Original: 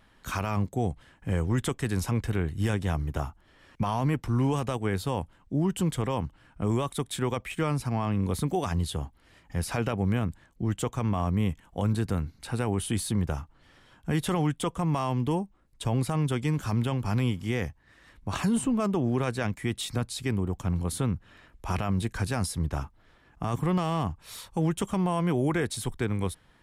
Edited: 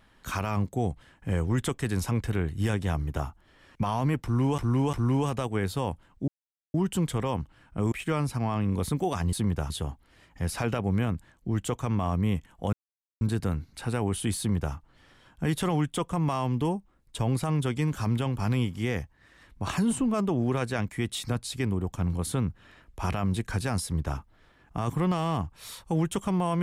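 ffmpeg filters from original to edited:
-filter_complex "[0:a]asplit=8[a][b][c][d][e][f][g][h];[a]atrim=end=4.582[i];[b]atrim=start=4.228:end=4.582[j];[c]atrim=start=4.228:end=5.58,asetpts=PTS-STARTPTS,afade=t=out:st=1.348:d=0.004:c=hsin,apad=pad_dur=0.46[k];[d]atrim=start=5.58:end=6.762,asetpts=PTS-STARTPTS,afade=t=in:d=0.004:c=hsin[l];[e]atrim=start=7.428:end=8.842[m];[f]atrim=start=13.038:end=13.412[n];[g]atrim=start=8.838:end=11.87,asetpts=PTS-STARTPTS,afade=t=out:st=3.028:d=0.004:c=hsin,apad=pad_dur=0.48[o];[h]atrim=start=11.87,asetpts=PTS-STARTPTS,afade=t=in:d=0.004:c=hsin[p];[i][j]acrossfade=d=0.004:c1=hsin:c2=hsin[q];[k][l]concat=n=2:v=0:a=1[r];[q][r]acrossfade=d=0.004:c1=hsin:c2=hsin[s];[s][m]acrossfade=d=0.004:c1=hsin:c2=hsin[t];[t][n]acrossfade=d=0.004:c1=hsin:c2=hsin[u];[o][p]concat=n=2:v=0:a=1[v];[u][v]acrossfade=d=0.004:c1=hsin:c2=hsin"

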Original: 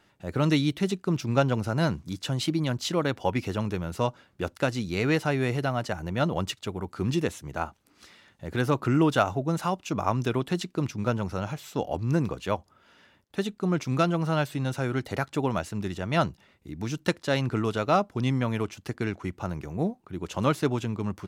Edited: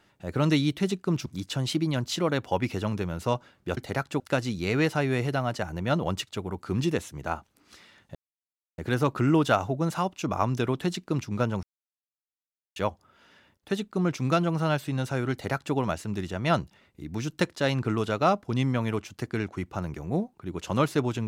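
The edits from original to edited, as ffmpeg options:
-filter_complex "[0:a]asplit=7[a][b][c][d][e][f][g];[a]atrim=end=1.262[h];[b]atrim=start=1.988:end=4.502[i];[c]atrim=start=14.988:end=15.422[j];[d]atrim=start=4.498:end=8.45,asetpts=PTS-STARTPTS,afade=t=out:st=3.948:d=0.004:c=hsin,apad=pad_dur=0.63[k];[e]atrim=start=8.45:end=11.3,asetpts=PTS-STARTPTS,afade=t=in:d=0.004:c=hsin,afade=t=out:st=2.846:d=0.004:c=hsin[l];[f]atrim=start=11.3:end=12.43,asetpts=PTS-STARTPTS,volume=0[m];[g]atrim=start=12.43,asetpts=PTS-STARTPTS,afade=t=in:d=0.004:c=hsin[n];[h][i]acrossfade=d=0.004:c1=hsin:c2=hsin[o];[o][j]acrossfade=d=0.004:c1=hsin:c2=hsin[p];[k][l][m][n]concat=n=4:v=0:a=1[q];[p][q]acrossfade=d=0.004:c1=hsin:c2=hsin"

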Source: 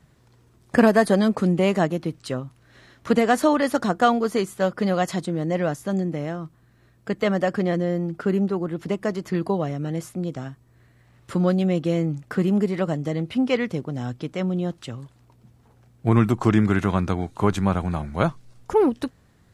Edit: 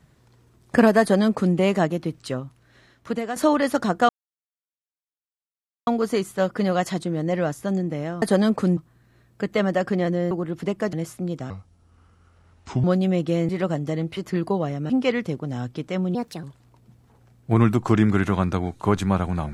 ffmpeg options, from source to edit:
-filter_complex "[0:a]asplit=14[a][b][c][d][e][f][g][h][i][j][k][l][m][n];[a]atrim=end=3.36,asetpts=PTS-STARTPTS,afade=t=out:st=2.3:d=1.06:silence=0.266073[o];[b]atrim=start=3.36:end=4.09,asetpts=PTS-STARTPTS,afade=t=in:d=0.004:c=hsin:silence=0.266073,afade=t=out:st=0.726:d=0.004:c=hsin,apad=pad_dur=1.78[p];[c]atrim=start=4.09:end=6.442,asetpts=PTS-STARTPTS,afade=t=in:d=0.004:c=hsin[q];[d]atrim=start=1.008:end=1.562[r];[e]atrim=start=6.438:end=7.982[s];[f]atrim=start=8.538:end=9.162[t];[g]atrim=start=9.888:end=10.464[u];[h]atrim=start=10.46:end=11.41,asetpts=PTS-STARTPTS,asetrate=31311,aresample=44100,atrim=end_sample=59007,asetpts=PTS-STARTPTS[v];[i]atrim=start=11.406:end=12.062[w];[j]atrim=start=12.668:end=13.352[x];[k]atrim=start=9.158:end=9.892[y];[l]atrim=start=13.348:end=14.604[z];[m]atrim=start=14.6:end=14.99,asetpts=PTS-STARTPTS,asetrate=60417,aresample=44100,atrim=end_sample=12554,asetpts=PTS-STARTPTS[aa];[n]atrim=start=14.986[ab];[o][p][q]concat=n=3:v=0:a=1[ac];[ac][r]acrossfade=d=0.004:c1=hsin:c2=hsin[ad];[ad][s]acrossfade=d=0.004:c1=hsin:c2=hsin[ae];[ae][t]acrossfade=d=0.004:c1=hsin:c2=hsin[af];[af][u]acrossfade=d=0.004:c1=hsin:c2=hsin[ag];[ag][v]acrossfade=d=0.004:c1=hsin:c2=hsin[ah];[ah][w]acrossfade=d=0.004:c1=hsin:c2=hsin[ai];[ai][x]acrossfade=d=0.004:c1=hsin:c2=hsin[aj];[aj][y]acrossfade=d=0.004:c1=hsin:c2=hsin[ak];[ak][z]acrossfade=d=0.004:c1=hsin:c2=hsin[al];[al][aa]acrossfade=d=0.004:c1=hsin:c2=hsin[am];[am][ab]acrossfade=d=0.004:c1=hsin:c2=hsin"

